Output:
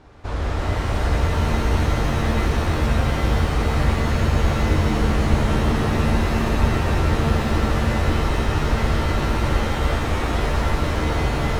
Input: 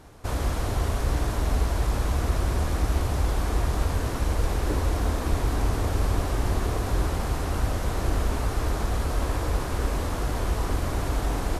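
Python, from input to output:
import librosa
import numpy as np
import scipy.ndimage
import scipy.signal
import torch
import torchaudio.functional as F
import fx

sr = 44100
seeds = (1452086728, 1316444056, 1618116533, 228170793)

y = scipy.signal.sosfilt(scipy.signal.butter(2, 4200.0, 'lowpass', fs=sr, output='sos'), x)
y = fx.rev_shimmer(y, sr, seeds[0], rt60_s=3.2, semitones=7, shimmer_db=-2, drr_db=-2.0)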